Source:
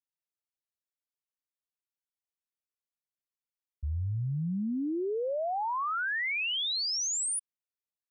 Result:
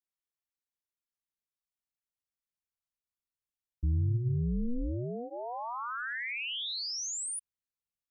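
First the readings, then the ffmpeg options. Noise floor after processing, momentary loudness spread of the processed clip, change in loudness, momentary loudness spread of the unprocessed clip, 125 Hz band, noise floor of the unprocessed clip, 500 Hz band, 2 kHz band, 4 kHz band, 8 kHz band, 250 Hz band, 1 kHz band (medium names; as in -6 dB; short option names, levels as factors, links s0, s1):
under -85 dBFS, 8 LU, -3.5 dB, 6 LU, +3.0 dB, under -85 dBFS, -7.5 dB, -5.0 dB, -5.0 dB, -5.0 dB, -3.0 dB, -6.0 dB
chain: -af "bandreject=f=540:w=12,tremolo=f=240:d=0.919,asubboost=boost=4:cutoff=180,volume=0.891"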